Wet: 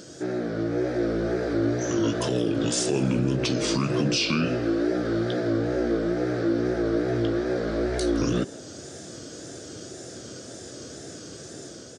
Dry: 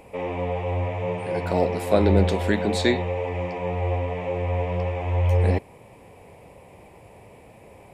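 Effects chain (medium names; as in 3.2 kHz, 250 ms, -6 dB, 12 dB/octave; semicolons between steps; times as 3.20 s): high-pass 150 Hz 24 dB/octave; resonant high shelf 4.1 kHz +13 dB, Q 1.5; in parallel at +2.5 dB: compression, threshold -34 dBFS, peak gain reduction 18.5 dB; on the sum: peak limiter -15.5 dBFS, peak gain reduction 10.5 dB; level rider gain up to 4 dB; wide varispeed 0.662×; wow and flutter 87 cents; on a send: frequency-shifting echo 165 ms, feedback 44%, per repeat +100 Hz, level -20 dB; on the sum: trim -3.5 dB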